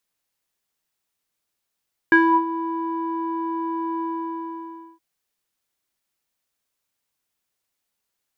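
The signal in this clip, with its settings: synth note square E4 12 dB/octave, low-pass 870 Hz, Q 7.3, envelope 1 oct, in 0.29 s, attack 1.2 ms, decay 0.33 s, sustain -13 dB, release 0.98 s, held 1.89 s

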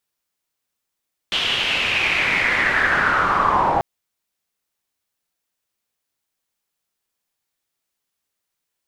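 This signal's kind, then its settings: swept filtered noise white, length 2.49 s lowpass, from 3.2 kHz, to 770 Hz, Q 5.1, linear, gain ramp +9.5 dB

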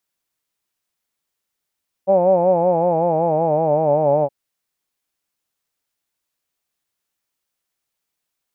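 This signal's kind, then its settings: formant-synthesis vowel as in hawed, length 2.22 s, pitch 187 Hz, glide -4.5 st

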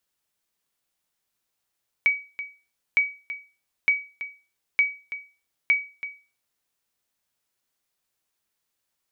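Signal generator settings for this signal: sonar ping 2.27 kHz, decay 0.33 s, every 0.91 s, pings 5, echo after 0.33 s, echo -13.5 dB -12 dBFS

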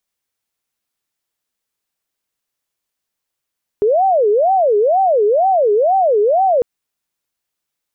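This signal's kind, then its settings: siren wail 409–776 Hz 2.1 per s sine -10 dBFS 2.80 s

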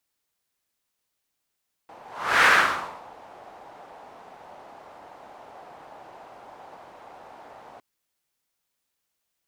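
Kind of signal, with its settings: whoosh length 5.91 s, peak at 0.57 s, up 0.45 s, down 0.66 s, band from 770 Hz, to 1.6 kHz, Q 2.7, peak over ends 30 dB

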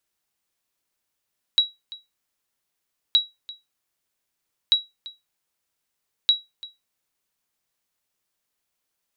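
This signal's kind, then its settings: sonar ping 3.88 kHz, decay 0.20 s, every 1.57 s, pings 4, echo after 0.34 s, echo -20 dB -9 dBFS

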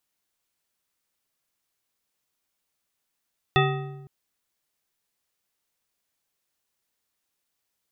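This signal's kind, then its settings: metal hit bar, length 0.51 s, lowest mode 141 Hz, modes 7, decay 1.27 s, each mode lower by 1 dB, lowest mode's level -19.5 dB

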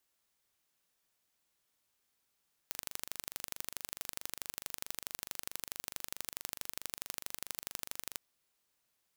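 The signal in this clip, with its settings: pulse train 24.6 per s, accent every 2, -10 dBFS 5.45 s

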